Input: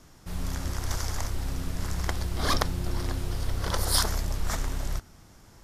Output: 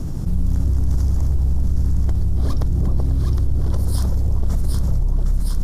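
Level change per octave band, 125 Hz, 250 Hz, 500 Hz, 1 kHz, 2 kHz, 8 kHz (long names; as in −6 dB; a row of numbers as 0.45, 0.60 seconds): +13.0 dB, +9.0 dB, +1.0 dB, −6.5 dB, below −10 dB, −7.0 dB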